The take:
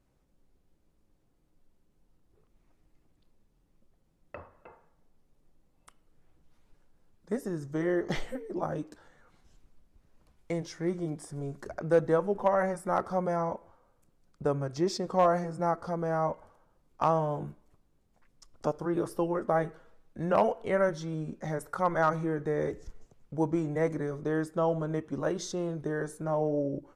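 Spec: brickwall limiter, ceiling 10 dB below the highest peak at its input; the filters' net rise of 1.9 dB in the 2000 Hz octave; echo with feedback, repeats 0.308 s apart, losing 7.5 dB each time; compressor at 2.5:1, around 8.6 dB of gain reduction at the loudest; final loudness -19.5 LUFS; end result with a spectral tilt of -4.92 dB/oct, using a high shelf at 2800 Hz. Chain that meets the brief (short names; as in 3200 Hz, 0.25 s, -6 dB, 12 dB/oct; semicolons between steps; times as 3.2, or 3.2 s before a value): bell 2000 Hz +3.5 dB; high shelf 2800 Hz -3 dB; compressor 2.5:1, threshold -32 dBFS; limiter -28 dBFS; feedback echo 0.308 s, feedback 42%, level -7.5 dB; gain +18.5 dB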